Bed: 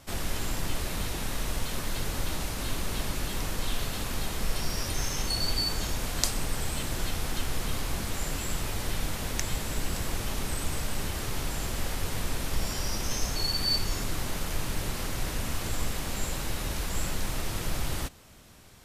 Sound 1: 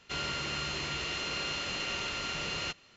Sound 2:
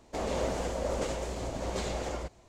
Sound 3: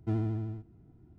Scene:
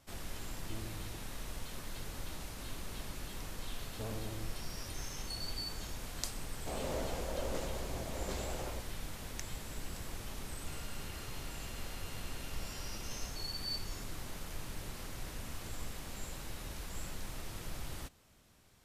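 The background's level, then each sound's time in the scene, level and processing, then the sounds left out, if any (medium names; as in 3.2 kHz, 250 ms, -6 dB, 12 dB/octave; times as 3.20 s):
bed -12 dB
0.63 s: add 3 -16.5 dB
3.92 s: add 3 -5.5 dB + transformer saturation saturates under 550 Hz
6.53 s: add 2 -7.5 dB
10.57 s: add 1 -16 dB + peak limiter -29 dBFS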